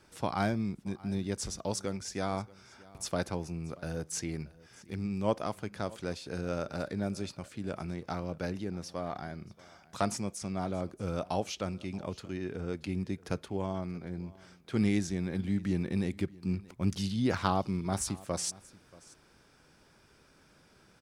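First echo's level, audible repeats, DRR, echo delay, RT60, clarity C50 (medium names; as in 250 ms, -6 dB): -22.0 dB, 1, no reverb, 631 ms, no reverb, no reverb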